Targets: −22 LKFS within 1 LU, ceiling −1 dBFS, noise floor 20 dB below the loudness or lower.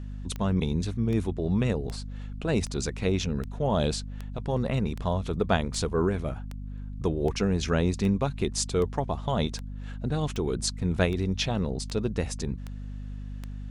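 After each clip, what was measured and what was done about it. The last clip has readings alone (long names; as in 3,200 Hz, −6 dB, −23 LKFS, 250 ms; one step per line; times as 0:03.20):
number of clicks 18; mains hum 50 Hz; hum harmonics up to 250 Hz; level of the hum −35 dBFS; integrated loudness −28.5 LKFS; sample peak −10.5 dBFS; target loudness −22.0 LKFS
→ click removal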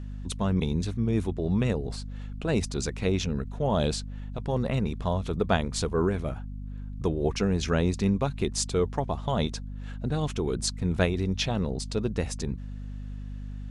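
number of clicks 0; mains hum 50 Hz; hum harmonics up to 250 Hz; level of the hum −35 dBFS
→ mains-hum notches 50/100/150/200/250 Hz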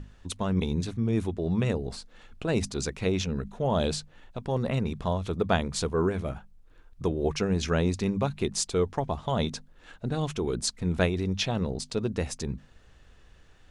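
mains hum none found; integrated loudness −29.0 LKFS; sample peak −9.5 dBFS; target loudness −22.0 LKFS
→ level +7 dB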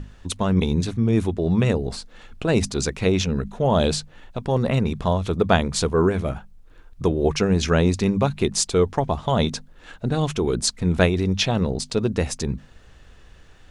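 integrated loudness −22.0 LKFS; sample peak −2.5 dBFS; background noise floor −49 dBFS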